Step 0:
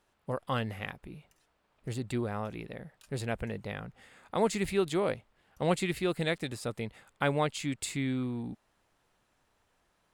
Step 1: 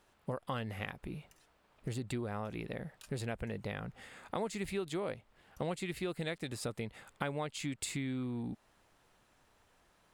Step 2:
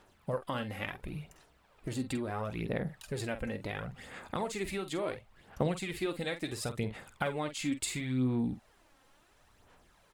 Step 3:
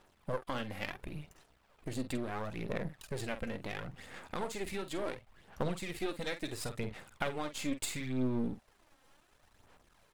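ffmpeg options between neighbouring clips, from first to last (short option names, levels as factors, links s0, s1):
-af "acompressor=threshold=0.01:ratio=4,volume=1.58"
-filter_complex "[0:a]asplit=2[s0][s1];[s1]adelay=47,volume=0.299[s2];[s0][s2]amix=inputs=2:normalize=0,aphaser=in_gain=1:out_gain=1:delay=3.8:decay=0.5:speed=0.72:type=sinusoidal,volume=1.26"
-af "aeval=exprs='if(lt(val(0),0),0.251*val(0),val(0))':c=same,volume=1.12"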